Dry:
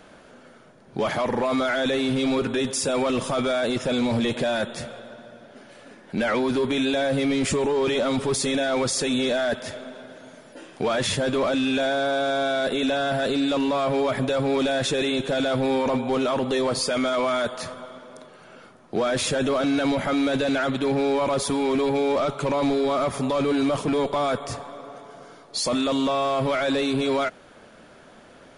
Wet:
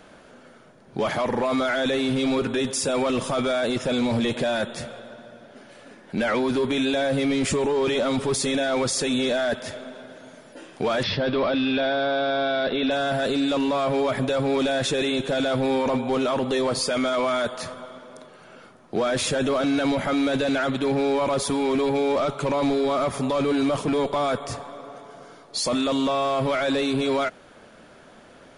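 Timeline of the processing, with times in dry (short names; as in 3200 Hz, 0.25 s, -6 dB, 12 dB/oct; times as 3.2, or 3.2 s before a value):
11.03–12.91 steep low-pass 5300 Hz 72 dB/oct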